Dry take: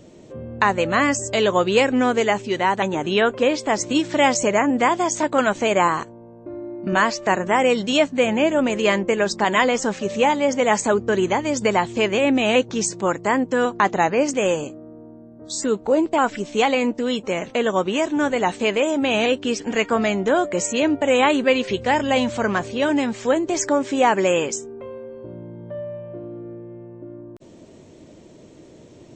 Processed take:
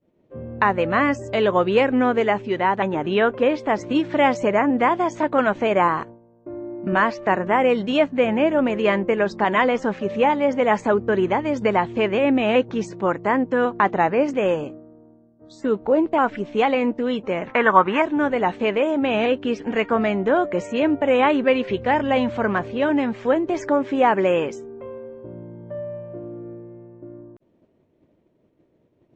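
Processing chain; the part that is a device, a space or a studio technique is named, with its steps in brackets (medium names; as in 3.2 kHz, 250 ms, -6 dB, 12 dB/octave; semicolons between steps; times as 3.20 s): hearing-loss simulation (low-pass 2.3 kHz 12 dB/octave; expander -34 dBFS); 17.47–18.02 s: high-order bell 1.4 kHz +12 dB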